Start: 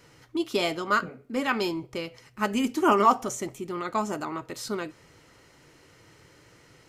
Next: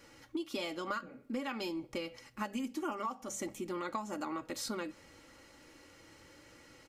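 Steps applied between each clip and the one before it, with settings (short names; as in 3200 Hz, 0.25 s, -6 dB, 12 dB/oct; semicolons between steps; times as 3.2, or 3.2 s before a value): notches 50/100/150/200 Hz; comb 3.6 ms, depth 57%; compressor 16:1, threshold -31 dBFS, peak gain reduction 20 dB; gain -3 dB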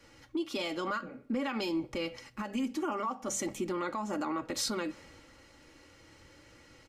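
high shelf 8900 Hz -9.5 dB; limiter -33 dBFS, peak gain reduction 10.5 dB; three-band expander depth 40%; gain +7.5 dB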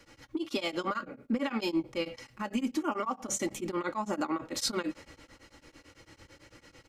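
beating tremolo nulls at 9 Hz; gain +4.5 dB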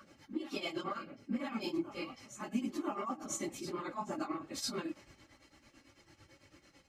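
phase scrambler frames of 50 ms; notch comb 480 Hz; reverse echo 0.999 s -12.5 dB; gain -5.5 dB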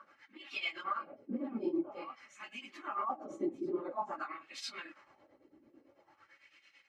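wah 0.49 Hz 340–2600 Hz, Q 2.4; gain +7 dB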